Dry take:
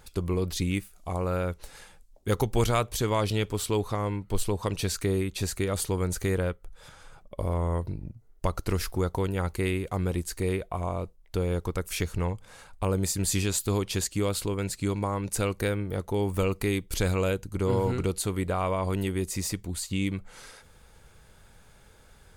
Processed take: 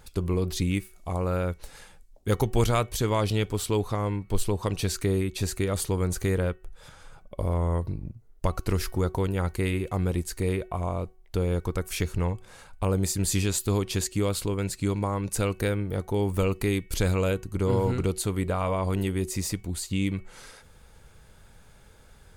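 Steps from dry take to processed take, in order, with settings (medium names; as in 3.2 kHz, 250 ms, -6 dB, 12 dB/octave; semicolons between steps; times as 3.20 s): bass shelf 320 Hz +2.5 dB; de-hum 372.3 Hz, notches 8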